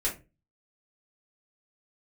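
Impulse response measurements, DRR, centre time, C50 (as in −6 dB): −6.0 dB, 20 ms, 10.5 dB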